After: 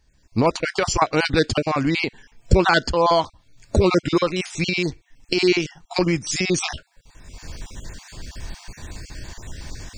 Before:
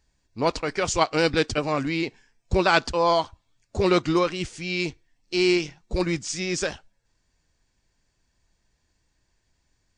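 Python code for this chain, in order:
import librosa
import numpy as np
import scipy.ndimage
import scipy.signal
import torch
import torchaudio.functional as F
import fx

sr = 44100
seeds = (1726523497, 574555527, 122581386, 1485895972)

y = fx.spec_dropout(x, sr, seeds[0], share_pct=31)
y = fx.recorder_agc(y, sr, target_db=-15.5, rise_db_per_s=32.0, max_gain_db=30)
y = fx.low_shelf(y, sr, hz=200.0, db=3.5)
y = y * librosa.db_to_amplitude(3.5)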